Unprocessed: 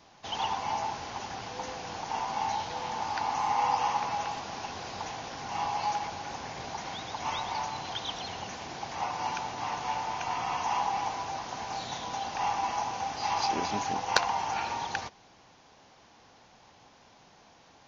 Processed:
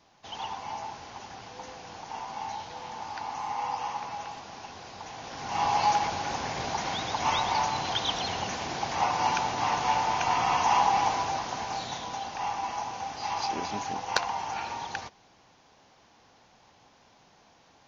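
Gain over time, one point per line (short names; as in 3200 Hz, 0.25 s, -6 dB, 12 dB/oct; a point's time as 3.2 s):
5.03 s -5 dB
5.73 s +6.5 dB
11.15 s +6.5 dB
12.37 s -2 dB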